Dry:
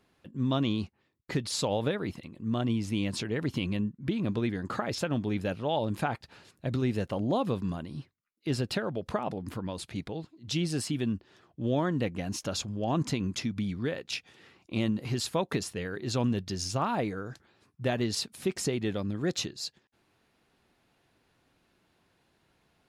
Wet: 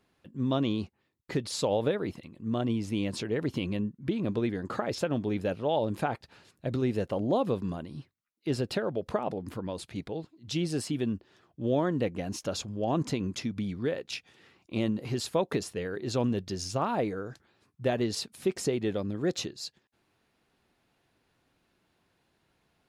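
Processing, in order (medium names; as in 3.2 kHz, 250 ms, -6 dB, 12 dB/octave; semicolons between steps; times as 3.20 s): dynamic bell 470 Hz, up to +6 dB, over -43 dBFS, Q 0.93; trim -2.5 dB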